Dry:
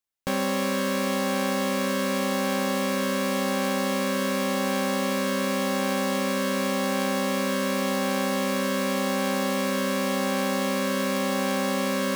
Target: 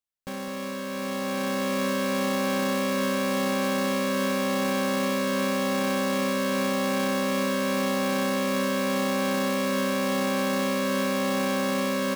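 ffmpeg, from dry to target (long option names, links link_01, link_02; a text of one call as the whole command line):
ffmpeg -i in.wav -filter_complex "[0:a]alimiter=limit=-21.5dB:level=0:latency=1:release=16,asplit=2[link_01][link_02];[link_02]aecho=0:1:211:0.224[link_03];[link_01][link_03]amix=inputs=2:normalize=0,dynaudnorm=framelen=870:gausssize=3:maxgain=8.5dB,lowshelf=frequency=180:gain=4.5,volume=-6.5dB" out.wav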